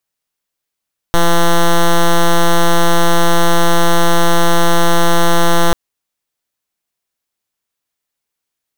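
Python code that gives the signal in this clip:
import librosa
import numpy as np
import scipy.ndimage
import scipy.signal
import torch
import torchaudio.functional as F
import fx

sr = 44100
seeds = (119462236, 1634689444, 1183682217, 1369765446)

y = fx.pulse(sr, length_s=4.59, hz=170.0, level_db=-8.5, duty_pct=7)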